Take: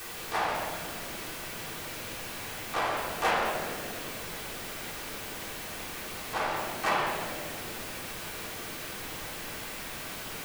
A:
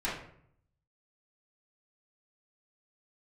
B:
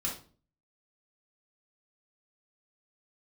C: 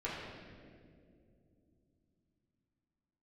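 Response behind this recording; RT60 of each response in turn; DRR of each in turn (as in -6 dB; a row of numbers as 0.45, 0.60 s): C; 0.65, 0.40, 2.5 s; -9.0, -3.5, -9.0 dB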